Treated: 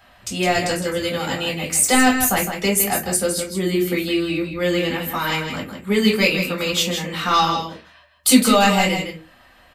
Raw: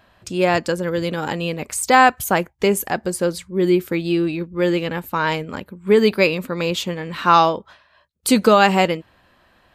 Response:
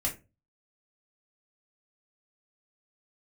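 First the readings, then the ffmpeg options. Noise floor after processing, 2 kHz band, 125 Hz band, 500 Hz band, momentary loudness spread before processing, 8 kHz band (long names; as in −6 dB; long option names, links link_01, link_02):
−51 dBFS, +0.5 dB, −0.5 dB, −3.5 dB, 11 LU, +8.5 dB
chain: -filter_complex "[0:a]crystalizer=i=1.5:c=0,asplit=2[link_01][link_02];[link_02]highpass=frequency=720:poles=1,volume=6dB,asoftclip=type=tanh:threshold=0dB[link_03];[link_01][link_03]amix=inputs=2:normalize=0,lowpass=frequency=5200:poles=1,volume=-6dB,acrossover=split=300|3000[link_04][link_05][link_06];[link_05]acompressor=threshold=-36dB:ratio=1.5[link_07];[link_04][link_07][link_06]amix=inputs=3:normalize=0,aecho=1:1:160:0.422[link_08];[1:a]atrim=start_sample=2205[link_09];[link_08][link_09]afir=irnorm=-1:irlink=0,volume=-2dB"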